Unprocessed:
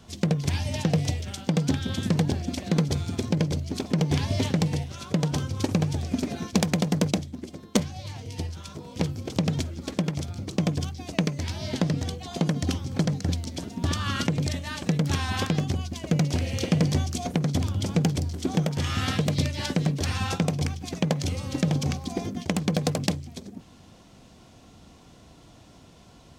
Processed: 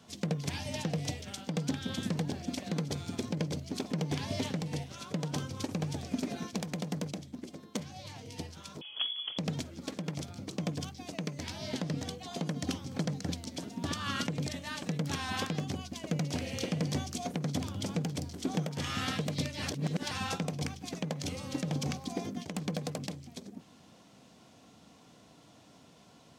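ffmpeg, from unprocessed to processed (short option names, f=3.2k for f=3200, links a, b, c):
-filter_complex "[0:a]asettb=1/sr,asplit=3[a][b][c];[a]atrim=end=8.814[d];[b]atrim=start=8.81:end=9.38,asetpts=PTS-STARTPTS,afade=t=in:d=0.004:c=qsin,afade=t=out:st=0.566:d=0.004:c=qsin,lowpass=f=3k:t=q:w=0.5098,lowpass=f=3k:t=q:w=0.6013,lowpass=f=3k:t=q:w=0.9,lowpass=f=3k:t=q:w=2.563,afreqshift=-3500[e];[c]atrim=start=9.376[f];[d][e]acrossfade=d=0.004:c1=hsin:c2=qsin[g];[g][f]acrossfade=d=0.004:c1=qsin:c2=hsin,asplit=3[h][i][j];[h]atrim=end=19.622[k];[i]atrim=start=19.618:end=20.112,asetpts=PTS-STARTPTS,areverse[l];[j]atrim=start=20.108[m];[k][l]acrossfade=d=0.004:c1=hsin:c2=hsin[n];[n][m]acrossfade=d=0.004:c1=hsin:c2=hsin,highpass=150,bandreject=f=360:w=12,alimiter=limit=-16.5dB:level=0:latency=1:release=152,volume=-4.5dB"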